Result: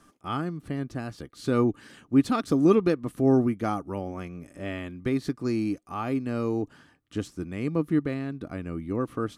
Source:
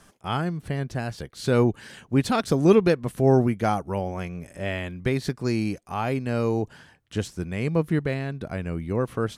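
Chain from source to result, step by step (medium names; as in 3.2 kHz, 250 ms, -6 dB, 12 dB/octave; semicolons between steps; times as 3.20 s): small resonant body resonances 290/1200 Hz, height 12 dB, ringing for 40 ms; trim -7 dB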